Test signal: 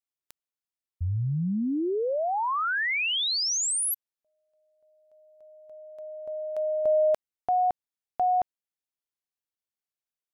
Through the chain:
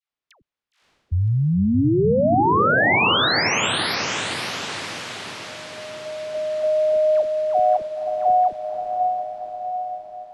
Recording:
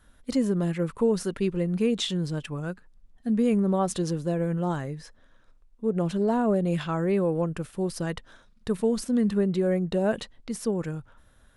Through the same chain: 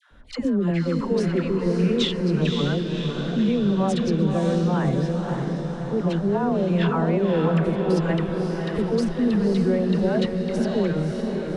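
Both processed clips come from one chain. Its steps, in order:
low-pass filter 3,600 Hz 12 dB per octave
brickwall limiter −23.5 dBFS
all-pass dispersion lows, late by 112 ms, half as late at 800 Hz
on a send: feedback delay with all-pass diffusion 557 ms, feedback 60%, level −4 dB
on the sum: level +8 dB

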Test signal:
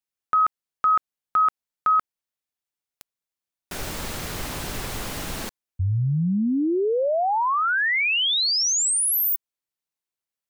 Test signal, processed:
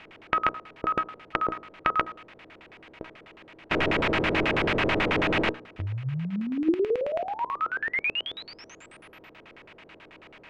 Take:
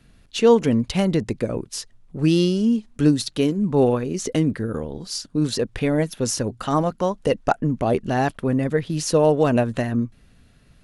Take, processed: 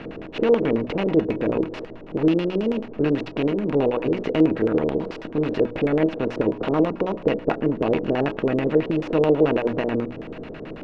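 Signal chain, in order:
compressor on every frequency bin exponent 0.4
high-shelf EQ 3,700 Hz −10 dB
tuned comb filter 320 Hz, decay 0.25 s, harmonics all, mix 70%
hum removal 60.32 Hz, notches 30
auto-filter low-pass square 9.2 Hz 450–2,500 Hz

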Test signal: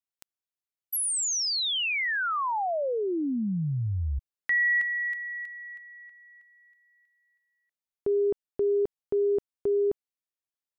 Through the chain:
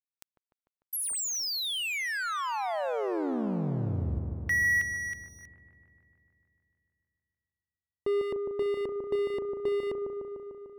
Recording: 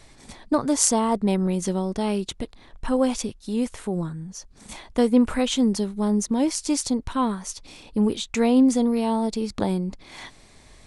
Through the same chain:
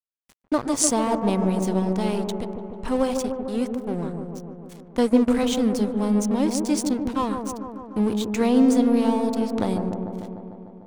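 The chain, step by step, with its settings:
dead-zone distortion −35 dBFS
delay with a low-pass on its return 149 ms, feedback 72%, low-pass 980 Hz, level −4.5 dB

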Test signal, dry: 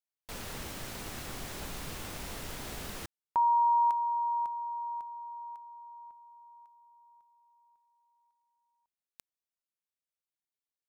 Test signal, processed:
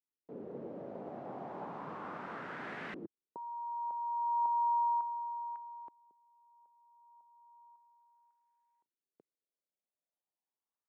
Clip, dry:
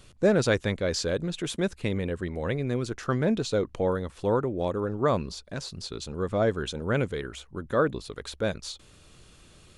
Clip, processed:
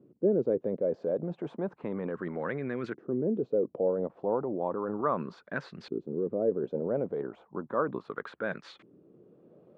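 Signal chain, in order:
high-pass filter 160 Hz 24 dB per octave
in parallel at −2.5 dB: compressor whose output falls as the input rises −33 dBFS, ratio −0.5
on the sum: auto-filter low-pass saw up 0.34 Hz 330–2,000 Hz
level −8 dB

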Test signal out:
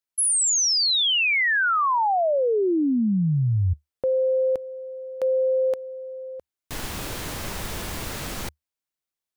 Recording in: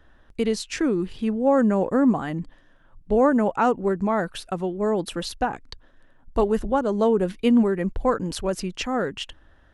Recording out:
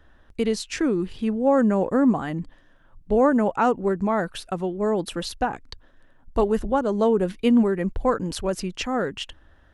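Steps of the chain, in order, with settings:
parametric band 75 Hz +3 dB 0.35 octaves

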